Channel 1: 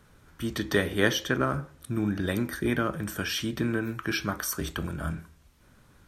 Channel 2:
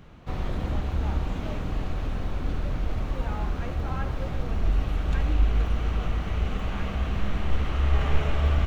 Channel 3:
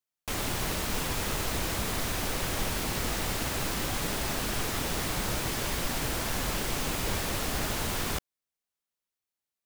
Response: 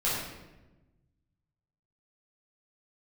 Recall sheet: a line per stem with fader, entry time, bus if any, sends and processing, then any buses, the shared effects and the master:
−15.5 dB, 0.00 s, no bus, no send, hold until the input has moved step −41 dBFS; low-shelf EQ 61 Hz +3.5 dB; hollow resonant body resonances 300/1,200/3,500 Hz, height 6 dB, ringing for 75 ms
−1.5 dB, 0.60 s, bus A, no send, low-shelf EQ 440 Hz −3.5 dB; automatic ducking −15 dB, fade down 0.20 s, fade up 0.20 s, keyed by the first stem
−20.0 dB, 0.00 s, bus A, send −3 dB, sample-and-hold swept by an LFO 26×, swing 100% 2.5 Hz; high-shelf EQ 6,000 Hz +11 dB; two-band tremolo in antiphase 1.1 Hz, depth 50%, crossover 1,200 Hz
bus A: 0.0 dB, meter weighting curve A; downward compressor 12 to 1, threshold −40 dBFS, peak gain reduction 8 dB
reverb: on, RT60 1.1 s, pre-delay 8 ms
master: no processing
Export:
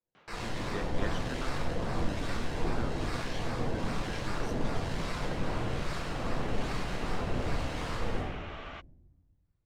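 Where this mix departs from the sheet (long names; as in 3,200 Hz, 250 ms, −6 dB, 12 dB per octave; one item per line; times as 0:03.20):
stem 2: entry 0.60 s → 0.15 s
stem 3 −20.0 dB → −9.5 dB
master: extra high-frequency loss of the air 85 metres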